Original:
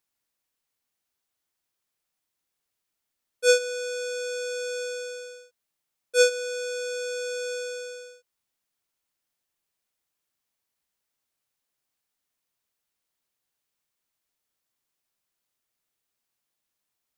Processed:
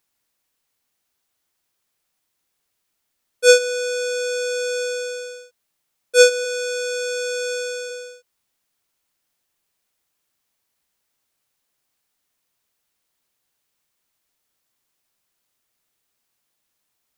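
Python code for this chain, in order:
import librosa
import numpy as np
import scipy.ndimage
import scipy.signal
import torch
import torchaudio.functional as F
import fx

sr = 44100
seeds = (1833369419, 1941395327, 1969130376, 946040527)

y = fx.highpass(x, sr, hz=410.0, slope=12, at=(6.44, 7.89), fade=0.02)
y = F.gain(torch.from_numpy(y), 7.5).numpy()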